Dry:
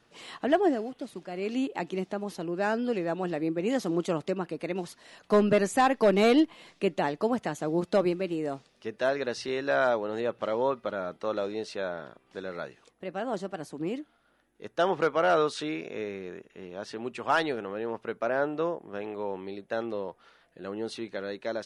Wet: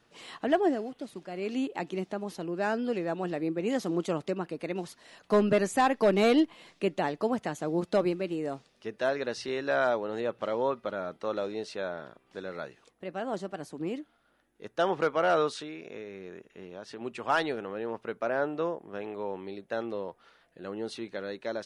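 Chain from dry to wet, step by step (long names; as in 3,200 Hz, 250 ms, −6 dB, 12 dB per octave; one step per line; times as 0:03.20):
0:15.55–0:17.01: downward compressor 4 to 1, threshold −37 dBFS, peak gain reduction 7.5 dB
level −1.5 dB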